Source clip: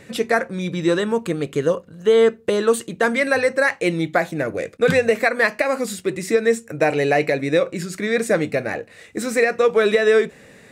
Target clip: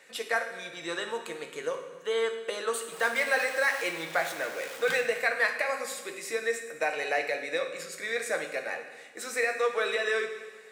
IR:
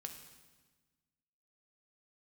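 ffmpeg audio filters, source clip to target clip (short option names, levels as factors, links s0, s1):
-filter_complex "[0:a]asettb=1/sr,asplit=3[s0][s1][s2];[s0]atrim=end=2.924[s3];[s1]atrim=start=2.92:end=5.01,asetpts=PTS-STARTPTS,afade=t=in:d=0.004:c=qsin,afade=t=out:st=2.086:d=0.004:c=qsin,aeval=exprs='val(0)+0.5*0.0473*sgn(val(0))':c=same[s4];[s2]atrim=start=5.006[s5];[s3][s4]acrossfade=d=0.004:c1=hsin:c2=qsin[s6];[s6][s5]acrossfade=d=0.004:c1=qsin:c2=hsin,highpass=720[s7];[1:a]atrim=start_sample=2205[s8];[s7][s8]afir=irnorm=-1:irlink=0,volume=0.75"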